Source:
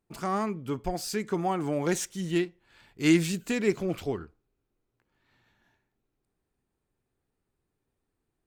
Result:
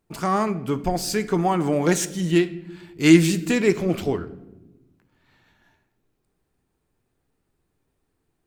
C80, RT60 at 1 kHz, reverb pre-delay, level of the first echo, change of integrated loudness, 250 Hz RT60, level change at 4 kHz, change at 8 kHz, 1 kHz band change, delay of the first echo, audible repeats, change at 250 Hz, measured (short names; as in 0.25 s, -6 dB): 18.5 dB, 0.85 s, 6 ms, none, +8.0 dB, 1.7 s, +7.0 dB, +7.0 dB, +7.0 dB, none, none, +8.0 dB